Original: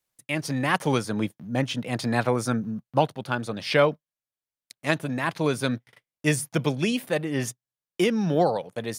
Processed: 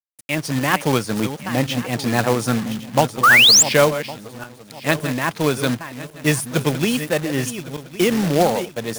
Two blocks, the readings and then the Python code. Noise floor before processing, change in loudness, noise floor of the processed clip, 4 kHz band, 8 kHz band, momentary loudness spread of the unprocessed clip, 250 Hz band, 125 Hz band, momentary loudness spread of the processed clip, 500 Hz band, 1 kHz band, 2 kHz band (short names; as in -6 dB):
under -85 dBFS, +8.5 dB, -45 dBFS, +15.5 dB, +16.5 dB, 8 LU, +5.0 dB, +5.0 dB, 17 LU, +5.0 dB, +7.0 dB, +11.0 dB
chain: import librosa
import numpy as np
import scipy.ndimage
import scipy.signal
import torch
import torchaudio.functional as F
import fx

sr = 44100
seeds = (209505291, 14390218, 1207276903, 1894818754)

y = fx.reverse_delay_fb(x, sr, ms=555, feedback_pct=48, wet_db=-11.0)
y = fx.spec_paint(y, sr, seeds[0], shape='rise', start_s=3.23, length_s=0.4, low_hz=1100.0, high_hz=7900.0, level_db=-15.0)
y = fx.quant_companded(y, sr, bits=4)
y = F.gain(torch.from_numpy(y), 4.5).numpy()